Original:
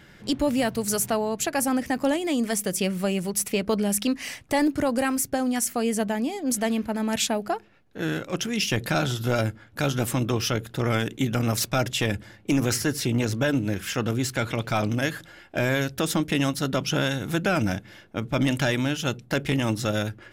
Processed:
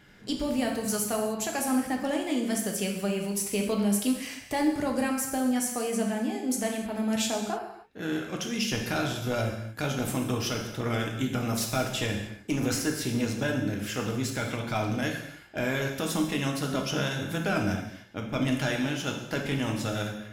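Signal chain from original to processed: non-linear reverb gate 0.33 s falling, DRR 1 dB; gain -6.5 dB

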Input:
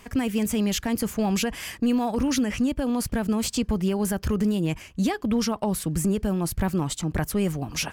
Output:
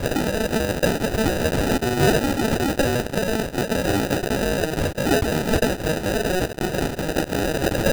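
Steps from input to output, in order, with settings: fuzz box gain 50 dB, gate -59 dBFS; Butterworth band-pass 990 Hz, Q 0.58; sample-rate reducer 1100 Hz, jitter 0%

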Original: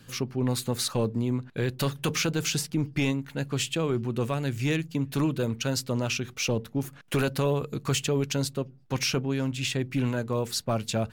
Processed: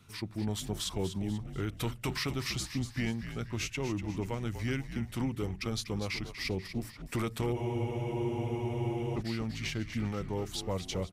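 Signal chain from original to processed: pitch shift -3 st; frequency-shifting echo 0.243 s, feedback 44%, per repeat -70 Hz, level -10 dB; spectral freeze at 7.56, 1.60 s; gain -7 dB

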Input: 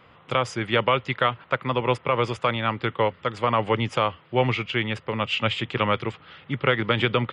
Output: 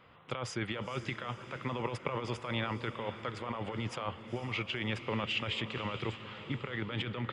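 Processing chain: negative-ratio compressor -27 dBFS, ratio -1; tremolo saw up 0.91 Hz, depth 30%; diffused feedback echo 0.483 s, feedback 49%, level -11.5 dB; gain -7.5 dB

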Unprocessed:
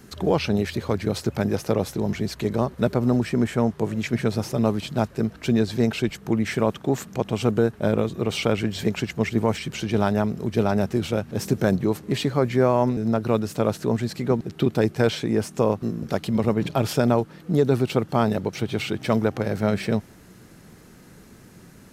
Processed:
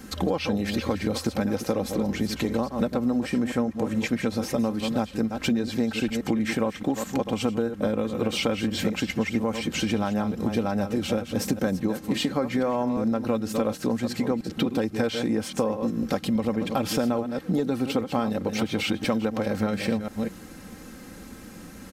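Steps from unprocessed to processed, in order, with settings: reverse delay 0.207 s, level -10 dB; comb 3.8 ms, depth 63%; compressor 6:1, threshold -26 dBFS, peak gain reduction 12.5 dB; gain +4 dB

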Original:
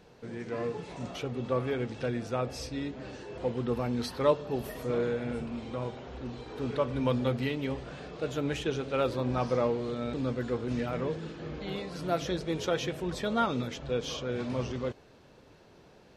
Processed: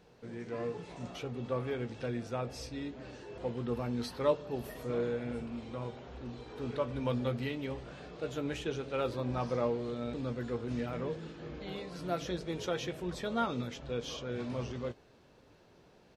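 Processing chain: doubler 17 ms -12 dB; gain -5 dB

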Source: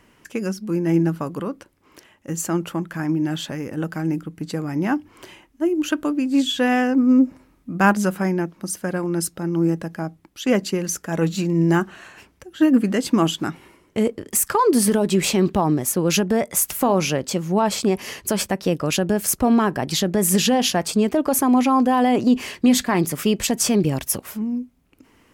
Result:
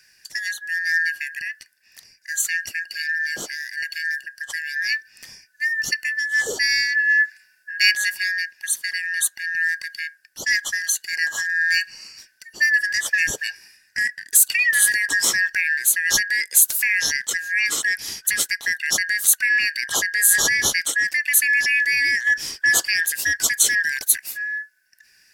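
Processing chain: four-band scrambler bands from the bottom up 3142; tone controls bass -4 dB, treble +10 dB; gain -3.5 dB

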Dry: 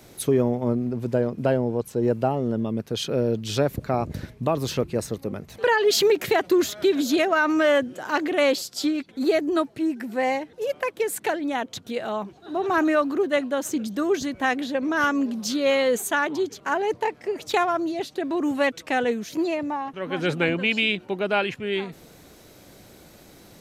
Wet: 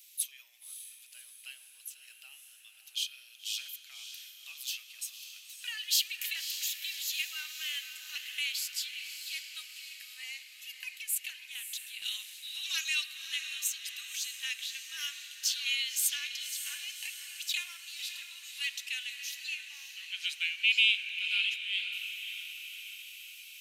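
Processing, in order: Chebyshev high-pass 2700 Hz, order 4; bell 5000 Hz -11 dB 2.4 oct, from 12.02 s +6.5 dB, from 13.06 s -6.5 dB; diffused feedback echo 0.571 s, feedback 56%, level -8.5 dB; reverb RT60 2.0 s, pre-delay 4 ms, DRR 11.5 dB; gain +6.5 dB

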